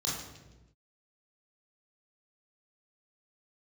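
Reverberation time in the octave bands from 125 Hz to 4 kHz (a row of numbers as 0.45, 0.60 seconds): 1.4, 1.3, 1.2, 0.90, 0.90, 0.85 seconds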